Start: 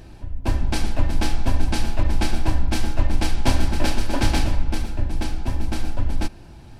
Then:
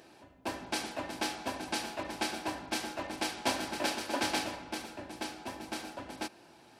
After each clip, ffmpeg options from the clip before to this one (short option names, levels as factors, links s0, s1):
-af "highpass=370,volume=0.562"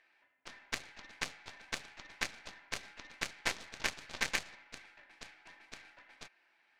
-af "bandpass=f=2000:t=q:w=3.6:csg=0,aeval=exprs='0.0562*(cos(1*acos(clip(val(0)/0.0562,-1,1)))-cos(1*PI/2))+0.0224*(cos(2*acos(clip(val(0)/0.0562,-1,1)))-cos(2*PI/2))+0.0141*(cos(4*acos(clip(val(0)/0.0562,-1,1)))-cos(4*PI/2))+0.01*(cos(7*acos(clip(val(0)/0.0562,-1,1)))-cos(7*PI/2))':c=same,volume=3.55"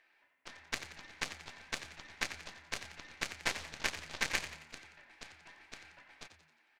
-filter_complex "[0:a]asplit=6[s0][s1][s2][s3][s4][s5];[s1]adelay=89,afreqshift=77,volume=0.282[s6];[s2]adelay=178,afreqshift=154,volume=0.124[s7];[s3]adelay=267,afreqshift=231,volume=0.0543[s8];[s4]adelay=356,afreqshift=308,volume=0.024[s9];[s5]adelay=445,afreqshift=385,volume=0.0106[s10];[s0][s6][s7][s8][s9][s10]amix=inputs=6:normalize=0"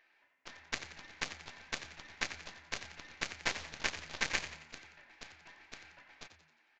-af "aresample=16000,aresample=44100"